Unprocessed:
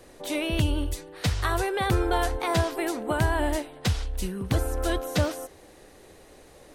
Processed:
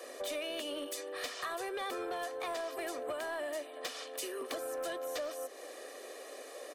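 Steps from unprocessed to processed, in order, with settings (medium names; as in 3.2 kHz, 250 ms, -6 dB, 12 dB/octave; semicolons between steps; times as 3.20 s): Chebyshev high-pass 250 Hz, order 10; comb 1.7 ms, depth 62%; compression 6:1, threshold -39 dBFS, peak gain reduction 16.5 dB; saturation -35 dBFS, distortion -17 dB; trim +4 dB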